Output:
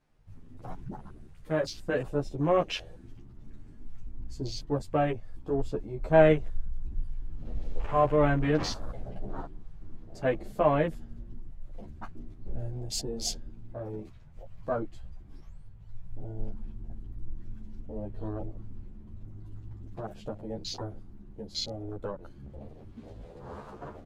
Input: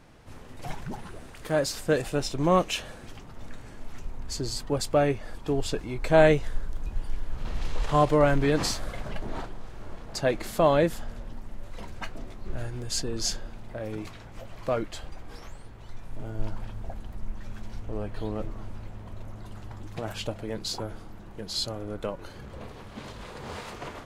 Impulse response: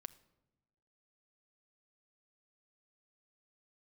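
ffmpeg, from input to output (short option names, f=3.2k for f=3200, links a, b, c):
-filter_complex "[0:a]asettb=1/sr,asplit=3[a][b][c];[a]atrim=end=12.704[d];[b]atrim=start=12.7:end=13.34,asetpts=PTS-STARTPTS,afade=t=in:d=0.004:c=qsin,afade=t=out:st=0.636:d=0.004:c=qsin,equalizer=f=810:t=o:w=0.41:g=11.5[e];[c]atrim=start=13.336[f];[d][e]acrossfade=d=0.004:c1=hsin:c2=qsin[g];[g][f]acrossfade=d=0.004:c1=qsin:c2=hsin,afwtdn=0.0158,asplit=2[h][i];[i]adelay=11,afreqshift=0.84[j];[h][j]amix=inputs=2:normalize=1"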